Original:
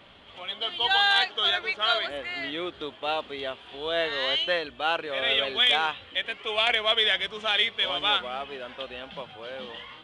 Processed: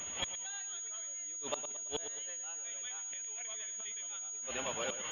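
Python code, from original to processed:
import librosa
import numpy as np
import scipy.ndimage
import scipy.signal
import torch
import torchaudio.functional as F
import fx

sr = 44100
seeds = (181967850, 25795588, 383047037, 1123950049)

p1 = fx.high_shelf(x, sr, hz=2500.0, db=12.0)
p2 = fx.stretch_grains(p1, sr, factor=0.51, grain_ms=185.0)
p3 = fx.gate_flip(p2, sr, shuts_db=-22.0, range_db=-30)
p4 = p3 + fx.echo_feedback(p3, sr, ms=112, feedback_pct=42, wet_db=-10.5, dry=0)
p5 = fx.pwm(p4, sr, carrier_hz=6700.0)
y = F.gain(torch.from_numpy(p5), 1.0).numpy()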